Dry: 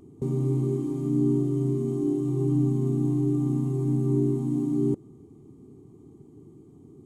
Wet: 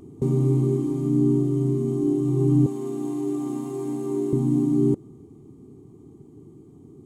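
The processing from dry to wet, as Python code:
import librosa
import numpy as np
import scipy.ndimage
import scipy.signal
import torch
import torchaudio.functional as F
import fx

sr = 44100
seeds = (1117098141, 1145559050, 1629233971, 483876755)

y = fx.highpass(x, sr, hz=450.0, slope=12, at=(2.66, 4.33))
y = fx.rider(y, sr, range_db=4, speed_s=2.0)
y = F.gain(torch.from_numpy(y), 4.5).numpy()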